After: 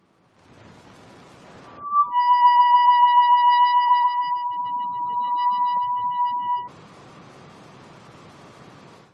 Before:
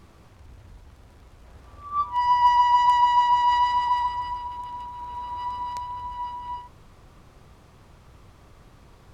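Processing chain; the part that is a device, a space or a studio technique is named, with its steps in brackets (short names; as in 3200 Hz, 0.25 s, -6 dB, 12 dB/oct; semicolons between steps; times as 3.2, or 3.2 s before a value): noise-suppressed video call (HPF 140 Hz 24 dB/oct; spectral gate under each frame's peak -30 dB strong; AGC gain up to 16 dB; gain -6 dB; Opus 32 kbps 48000 Hz)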